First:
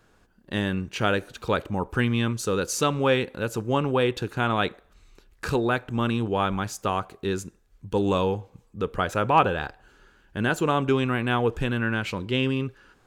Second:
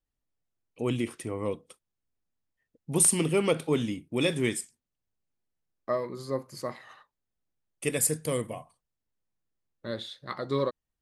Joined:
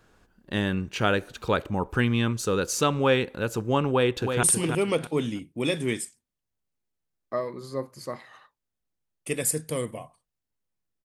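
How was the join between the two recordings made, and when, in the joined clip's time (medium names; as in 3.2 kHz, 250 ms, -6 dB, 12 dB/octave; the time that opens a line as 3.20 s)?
first
3.89–4.43 s: echo throw 320 ms, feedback 25%, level -6 dB
4.43 s: go over to second from 2.99 s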